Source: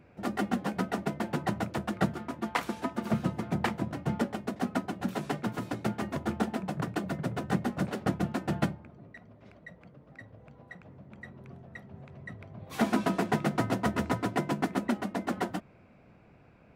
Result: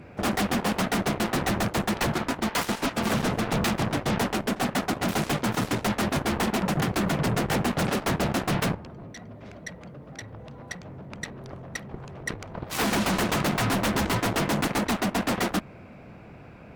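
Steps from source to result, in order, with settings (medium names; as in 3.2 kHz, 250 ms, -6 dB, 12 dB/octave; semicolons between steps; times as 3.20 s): sine folder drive 15 dB, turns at -12 dBFS; Chebyshev shaper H 7 -10 dB, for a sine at -11.5 dBFS; trim -8 dB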